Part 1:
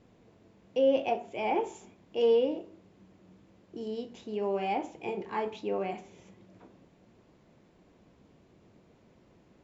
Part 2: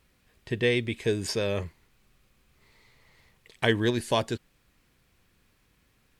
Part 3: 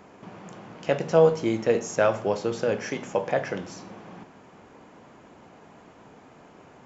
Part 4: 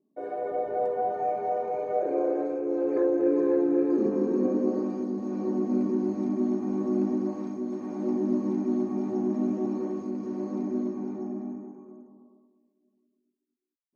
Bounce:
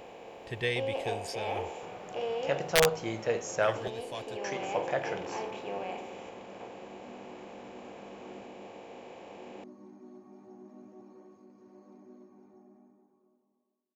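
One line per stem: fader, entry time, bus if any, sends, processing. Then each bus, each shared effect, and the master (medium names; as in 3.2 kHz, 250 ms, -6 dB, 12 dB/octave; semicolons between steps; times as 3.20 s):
-8.5 dB, 0.00 s, no send, spectral levelling over time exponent 0.4
-7.5 dB, 0.00 s, no send, level rider gain up to 12 dB; auto duck -13 dB, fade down 1.45 s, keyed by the first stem
-4.0 dB, 1.60 s, muted 3.88–4.44 s, no send, integer overflow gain 8 dB
-16.0 dB, 1.35 s, no send, none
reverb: none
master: peaking EQ 260 Hz -10 dB 1.3 oct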